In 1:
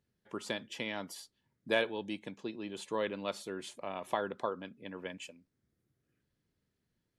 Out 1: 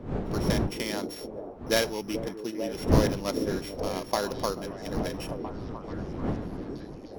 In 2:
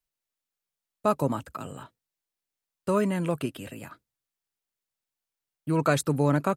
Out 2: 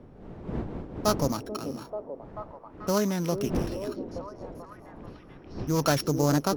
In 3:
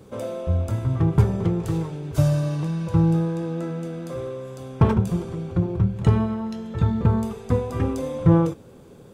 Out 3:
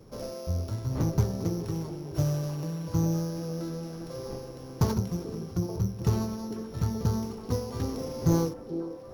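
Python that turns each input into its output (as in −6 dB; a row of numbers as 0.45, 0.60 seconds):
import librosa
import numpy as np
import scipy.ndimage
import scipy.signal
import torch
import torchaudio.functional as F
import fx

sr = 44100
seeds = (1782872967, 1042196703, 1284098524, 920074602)

y = np.r_[np.sort(x[:len(x) // 8 * 8].reshape(-1, 8), axis=1).ravel(), x[len(x) // 8 * 8:]]
y = fx.dmg_wind(y, sr, seeds[0], corner_hz=320.0, level_db=-38.0)
y = fx.echo_stepped(y, sr, ms=437, hz=340.0, octaves=0.7, feedback_pct=70, wet_db=-4.5)
y = fx.doppler_dist(y, sr, depth_ms=0.2)
y = y * 10.0 ** (-30 / 20.0) / np.sqrt(np.mean(np.square(y)))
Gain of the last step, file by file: +5.5, −1.0, −8.0 decibels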